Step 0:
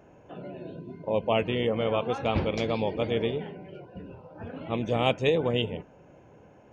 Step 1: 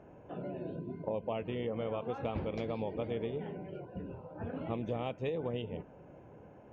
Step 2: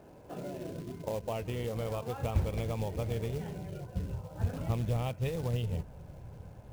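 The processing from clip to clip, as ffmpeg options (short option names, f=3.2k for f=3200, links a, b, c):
-af "acompressor=threshold=-32dB:ratio=6,lowpass=f=1.5k:p=1"
-af "acrusher=bits=4:mode=log:mix=0:aa=0.000001,asubboost=boost=10.5:cutoff=93,volume=1dB"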